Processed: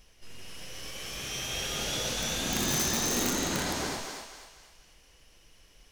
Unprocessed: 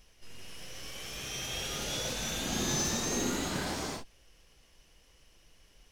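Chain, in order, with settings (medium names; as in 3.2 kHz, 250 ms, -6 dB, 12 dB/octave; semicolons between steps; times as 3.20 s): thinning echo 245 ms, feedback 42%, high-pass 530 Hz, level -4 dB; integer overflow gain 22 dB; trim +2 dB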